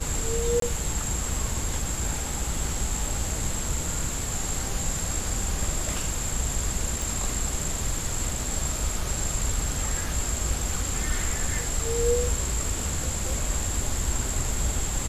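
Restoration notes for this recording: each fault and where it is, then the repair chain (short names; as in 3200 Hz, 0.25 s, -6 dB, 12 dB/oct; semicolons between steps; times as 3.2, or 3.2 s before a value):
0.6–0.62 gap 23 ms
7.02 pop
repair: de-click; interpolate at 0.6, 23 ms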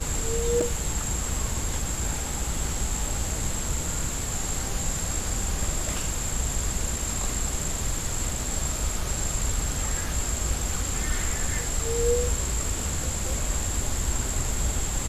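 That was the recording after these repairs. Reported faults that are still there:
none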